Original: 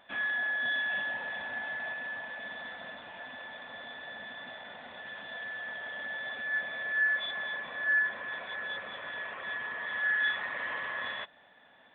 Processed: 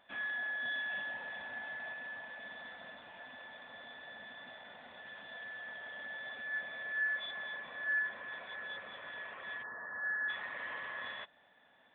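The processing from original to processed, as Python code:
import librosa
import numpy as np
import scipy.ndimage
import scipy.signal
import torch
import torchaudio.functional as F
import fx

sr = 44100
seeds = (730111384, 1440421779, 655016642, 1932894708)

y = fx.steep_lowpass(x, sr, hz=1800.0, slope=96, at=(9.62, 10.28), fade=0.02)
y = y * librosa.db_to_amplitude(-6.5)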